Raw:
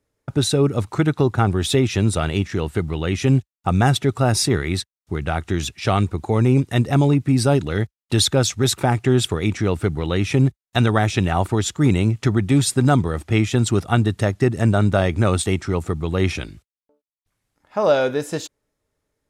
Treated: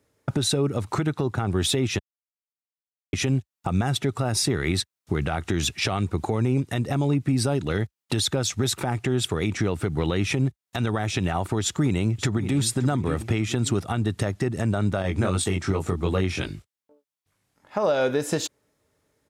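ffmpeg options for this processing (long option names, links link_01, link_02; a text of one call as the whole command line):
ffmpeg -i in.wav -filter_complex "[0:a]asplit=2[link_01][link_02];[link_02]afade=type=in:start_time=11.61:duration=0.01,afade=type=out:start_time=12.57:duration=0.01,aecho=0:1:570|1140|1710:0.211349|0.0739721|0.0258902[link_03];[link_01][link_03]amix=inputs=2:normalize=0,asettb=1/sr,asplit=3[link_04][link_05][link_06];[link_04]atrim=end=15.024[link_07];[link_05]atrim=start=15.02:end=17.78,asetpts=PTS-STARTPTS,afade=type=in:duration=0.004:curve=qsin,afade=type=out:start_time=2.756:duration=0.004:curve=qsin,flanger=delay=20:depth=3.2:speed=2.6[link_08];[link_06]atrim=start=17.776[link_09];[link_07][link_08]acrossfade=duration=0.004:curve1=hsin:curve2=qsin[link_10];[link_10][link_09]acrossfade=duration=0.004:curve1=qsin:curve2=hsin,asplit=3[link_11][link_12][link_13];[link_11]atrim=end=1.99,asetpts=PTS-STARTPTS,afade=type=out:start_time=1.986:duration=0.004:curve=hsin[link_14];[link_12]atrim=start=1.99:end=3.13,asetpts=PTS-STARTPTS,volume=0[link_15];[link_13]atrim=start=3.13,asetpts=PTS-STARTPTS,afade=type=in:duration=0.004:curve=hsin[link_16];[link_14][link_15][link_16]concat=n=3:v=0:a=1,highpass=76,acompressor=threshold=-25dB:ratio=6,alimiter=limit=-19.5dB:level=0:latency=1:release=81,volume=6.5dB" out.wav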